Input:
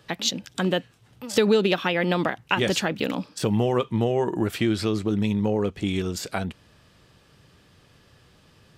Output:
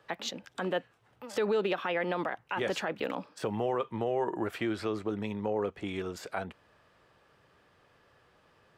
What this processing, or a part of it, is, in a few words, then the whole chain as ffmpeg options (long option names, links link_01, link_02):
DJ mixer with the lows and highs turned down: -filter_complex "[0:a]acrossover=split=410 2100:gain=0.224 1 0.224[link_01][link_02][link_03];[link_01][link_02][link_03]amix=inputs=3:normalize=0,alimiter=limit=-19.5dB:level=0:latency=1:release=35,volume=-1.5dB"